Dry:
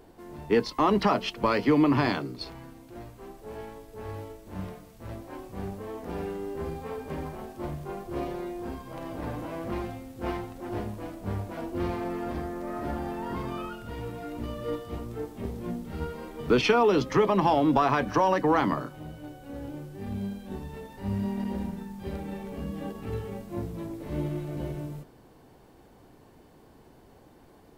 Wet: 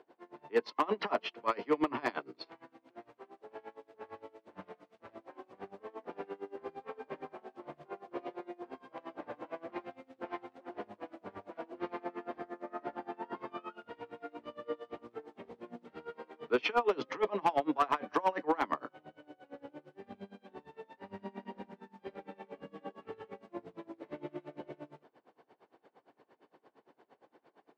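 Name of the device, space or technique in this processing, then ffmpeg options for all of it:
helicopter radio: -af "highpass=400,lowpass=2900,aeval=exprs='val(0)*pow(10,-25*(0.5-0.5*cos(2*PI*8.7*n/s))/20)':c=same,asoftclip=type=hard:threshold=0.1"

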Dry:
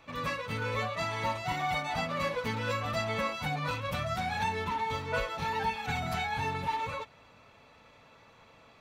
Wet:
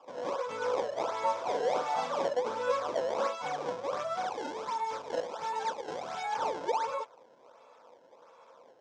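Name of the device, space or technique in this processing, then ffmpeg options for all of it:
circuit-bent sampling toy: -filter_complex "[0:a]acrusher=samples=21:mix=1:aa=0.000001:lfo=1:lforange=33.6:lforate=1.4,highpass=460,equalizer=f=510:t=q:w=4:g=10,equalizer=f=990:t=q:w=4:g=6,equalizer=f=1900:t=q:w=4:g=-9,equalizer=f=2800:t=q:w=4:g=-8,equalizer=f=4300:t=q:w=4:g=-8,lowpass=f=5700:w=0.5412,lowpass=f=5700:w=1.3066,asettb=1/sr,asplit=3[s0][s1][s2];[s0]atrim=end=1.324[s3];[s1]atrim=start=1.32:end=2.2,asetpts=PTS-STARTPTS,afade=t=in:d=0.004:c=qsin,afade=t=out:st=0.876:d=0.004:c=qsin,asplit=2[s4][s5];[s5]adelay=48,volume=0.531[s6];[s4][s6]amix=inputs=2:normalize=0,atrim=end_sample=38808[s7];[s2]atrim=start=2.196[s8];[s3][s7]acrossfade=d=0.004:c1=hsin:c2=qsin[s9];[s9][s8]acrossfade=d=0.004:c1=qsin:c2=hsin,asettb=1/sr,asplit=3[s10][s11][s12];[s10]atrim=end=4.304[s13];[s11]atrim=start=4.3:end=6.24,asetpts=PTS-STARTPTS,afade=t=in:d=0.004:c=qsin,afade=t=out:st=1.936:d=0.004:c=qsin,equalizer=f=620:w=0.33:g=-4[s14];[s12]atrim=start=6.236[s15];[s13][s14]acrossfade=d=0.004:c1=hsin:c2=qsin[s16];[s16][s15]acrossfade=d=0.004:c1=qsin:c2=hsin"

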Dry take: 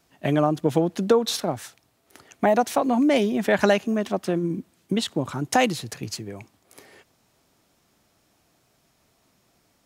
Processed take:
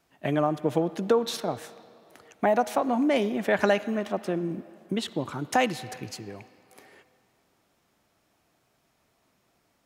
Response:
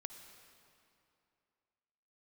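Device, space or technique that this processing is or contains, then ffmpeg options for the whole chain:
filtered reverb send: -filter_complex "[0:a]asplit=2[s0][s1];[s1]highpass=f=460:p=1,lowpass=3500[s2];[1:a]atrim=start_sample=2205[s3];[s2][s3]afir=irnorm=-1:irlink=0,volume=1.06[s4];[s0][s4]amix=inputs=2:normalize=0,volume=0.473"

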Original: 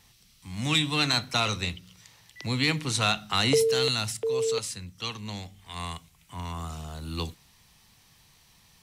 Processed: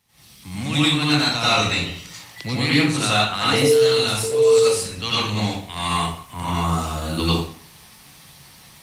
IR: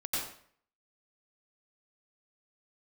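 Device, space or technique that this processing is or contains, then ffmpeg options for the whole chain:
far-field microphone of a smart speaker: -filter_complex "[1:a]atrim=start_sample=2205[s0];[0:a][s0]afir=irnorm=-1:irlink=0,highpass=88,dynaudnorm=f=140:g=3:m=5.62,volume=0.631" -ar 48000 -c:a libopus -b:a 32k

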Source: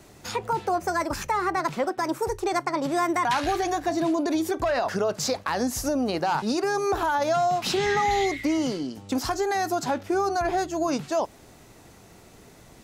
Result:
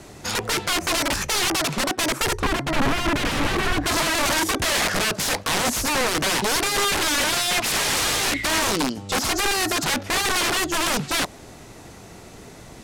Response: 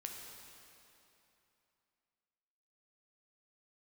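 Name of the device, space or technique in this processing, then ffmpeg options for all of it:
overflowing digital effects unit: -filter_complex "[0:a]aeval=exprs='(mod(16.8*val(0)+1,2)-1)/16.8':c=same,lowpass=12000,asplit=3[s0][s1][s2];[s0]afade=t=out:st=2.38:d=0.02[s3];[s1]bass=f=250:g=9,treble=f=4000:g=-12,afade=t=in:st=2.38:d=0.02,afade=t=out:st=3.85:d=0.02[s4];[s2]afade=t=in:st=3.85:d=0.02[s5];[s3][s4][s5]amix=inputs=3:normalize=0,volume=2.51"

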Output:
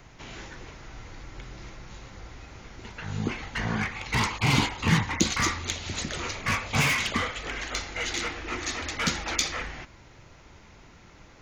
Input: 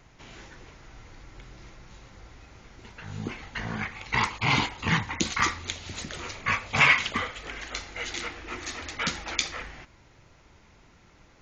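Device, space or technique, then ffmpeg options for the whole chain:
one-band saturation: -filter_complex "[0:a]acrossover=split=400|4800[s0][s1][s2];[s1]asoftclip=type=tanh:threshold=0.0335[s3];[s0][s3][s2]amix=inputs=3:normalize=0,volume=1.78"

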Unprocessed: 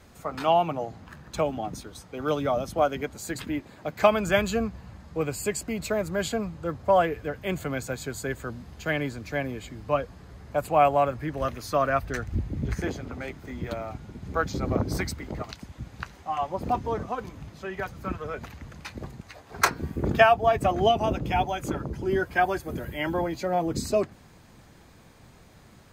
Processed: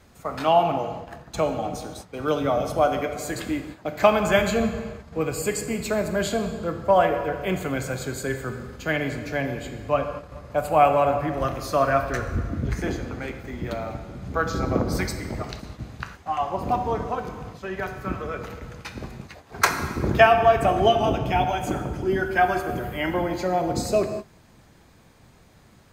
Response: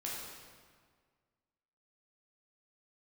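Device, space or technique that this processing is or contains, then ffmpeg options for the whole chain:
keyed gated reverb: -filter_complex "[0:a]asplit=3[s0][s1][s2];[1:a]atrim=start_sample=2205[s3];[s1][s3]afir=irnorm=-1:irlink=0[s4];[s2]apad=whole_len=1143078[s5];[s4][s5]sidechaingate=range=0.0224:threshold=0.00631:ratio=16:detection=peak,volume=0.75[s6];[s0][s6]amix=inputs=2:normalize=0,volume=0.891"

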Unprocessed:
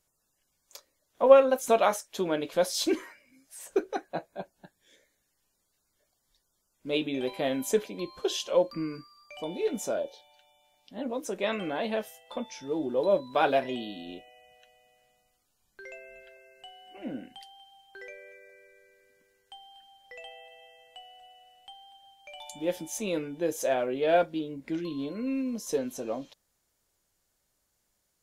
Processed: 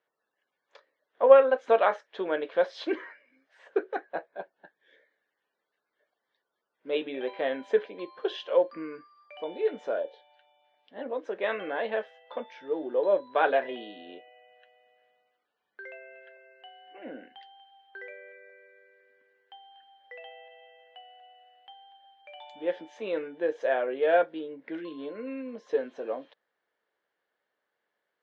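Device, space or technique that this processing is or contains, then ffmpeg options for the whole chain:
phone earpiece: -af "highpass=400,equalizer=f=460:t=q:w=4:g=5,equalizer=f=1700:t=q:w=4:g=7,equalizer=f=2500:t=q:w=4:g=-4,lowpass=f=3100:w=0.5412,lowpass=f=3100:w=1.3066"

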